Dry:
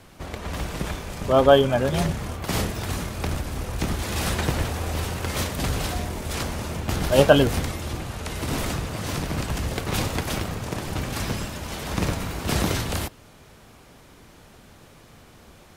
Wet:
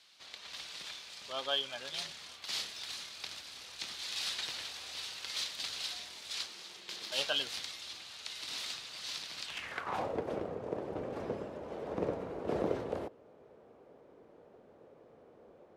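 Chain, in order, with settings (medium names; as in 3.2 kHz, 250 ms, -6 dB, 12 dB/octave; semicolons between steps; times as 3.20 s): 6.46–7.12 s: ring modulator 270 Hz; band-pass sweep 4.1 kHz -> 480 Hz, 9.44–10.15 s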